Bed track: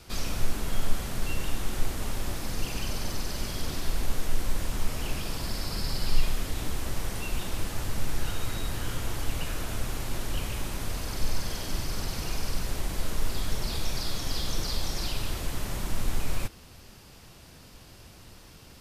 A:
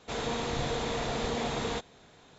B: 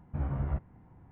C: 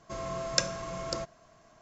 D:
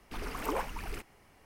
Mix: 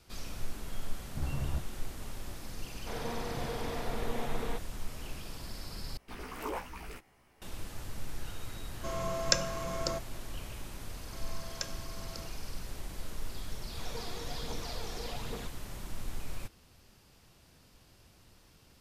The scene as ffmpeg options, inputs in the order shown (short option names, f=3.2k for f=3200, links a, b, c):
-filter_complex "[1:a]asplit=2[a][b];[3:a]asplit=2[c][d];[0:a]volume=-10.5dB[e];[a]lowpass=2.7k[f];[4:a]asplit=2[g][h];[h]adelay=16,volume=-2dB[i];[g][i]amix=inputs=2:normalize=0[j];[d]equalizer=f=330:t=o:w=2.3:g=-5[k];[b]aphaser=in_gain=1:out_gain=1:delay=3:decay=0.5:speed=1.2:type=triangular[l];[e]asplit=2[m][n];[m]atrim=end=5.974[o];[j]atrim=end=1.45,asetpts=PTS-STARTPTS,volume=-6dB[p];[n]atrim=start=7.416[q];[2:a]atrim=end=1.11,asetpts=PTS-STARTPTS,volume=-4dB,afade=t=in:d=0.004:c=hsin,afade=t=out:st=1.106:d=0.004:c=hsin,adelay=1020[r];[f]atrim=end=2.38,asetpts=PTS-STARTPTS,volume=-5.5dB,afade=t=in:d=0.004:c=hsin,afade=t=out:st=2.376:d=0.004:c=hsin,adelay=2780[s];[c]atrim=end=1.81,asetpts=PTS-STARTPTS,afade=t=in:d=0.004:c=hsin,afade=t=out:st=1.806:d=0.004:c=hsin,adelay=385434S[t];[k]atrim=end=1.81,asetpts=PTS-STARTPTS,volume=-11.5dB,afade=t=in:d=0.004:c=hsin,afade=t=out:st=1.806:d=0.004:c=hsin,adelay=11030[u];[l]atrim=end=2.38,asetpts=PTS-STARTPTS,volume=-13dB,afade=t=in:d=0.004:c=hsin,afade=t=out:st=2.376:d=0.004:c=hsin,adelay=13680[v];[o][p]acrossfade=d=0.004:c1=hsin:c2=hsin[w];[w][q]acrossfade=d=0.004:c1=hsin:c2=hsin[x];[x][r][s][t][u][v]amix=inputs=6:normalize=0"